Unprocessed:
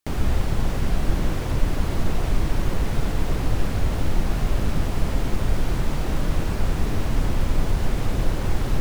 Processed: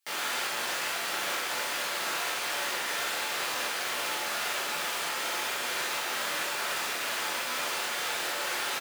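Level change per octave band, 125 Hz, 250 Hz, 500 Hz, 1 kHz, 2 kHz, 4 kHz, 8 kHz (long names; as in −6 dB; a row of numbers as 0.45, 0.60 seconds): −34.5, −19.0, −6.5, +1.5, +6.5, +7.5, +7.5 decibels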